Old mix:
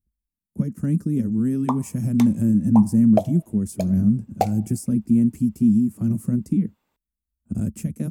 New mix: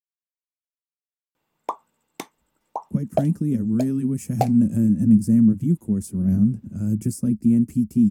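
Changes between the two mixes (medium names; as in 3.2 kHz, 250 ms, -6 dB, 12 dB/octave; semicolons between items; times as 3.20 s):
speech: entry +2.35 s; reverb: off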